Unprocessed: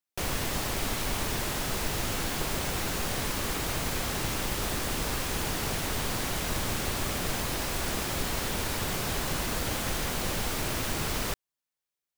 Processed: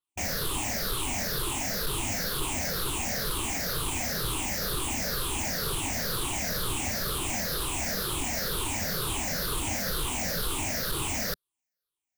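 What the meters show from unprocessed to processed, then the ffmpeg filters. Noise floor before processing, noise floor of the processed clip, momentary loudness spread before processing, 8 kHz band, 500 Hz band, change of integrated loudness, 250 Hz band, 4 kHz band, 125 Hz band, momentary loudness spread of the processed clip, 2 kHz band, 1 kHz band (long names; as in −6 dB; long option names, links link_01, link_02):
below −85 dBFS, below −85 dBFS, 0 LU, +3.0 dB, −1.0 dB, +1.5 dB, −1.0 dB, +1.5 dB, −1.5 dB, 0 LU, −0.5 dB, −1.0 dB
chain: -filter_complex "[0:a]afftfilt=real='re*pow(10,16/40*sin(2*PI*(0.63*log(max(b,1)*sr/1024/100)/log(2)-(-2.1)*(pts-256)/sr)))':imag='im*pow(10,16/40*sin(2*PI*(0.63*log(max(b,1)*sr/1024/100)/log(2)-(-2.1)*(pts-256)/sr)))':win_size=1024:overlap=0.75,asplit=2[link_01][link_02];[link_02]aeval=exprs='0.0794*(abs(mod(val(0)/0.0794+3,4)-2)-1)':channel_layout=same,volume=-6.5dB[link_03];[link_01][link_03]amix=inputs=2:normalize=0,adynamicequalizer=threshold=0.00891:dfrequency=3700:dqfactor=0.7:tfrequency=3700:tqfactor=0.7:attack=5:release=100:ratio=0.375:range=2:mode=boostabove:tftype=highshelf,volume=-7dB"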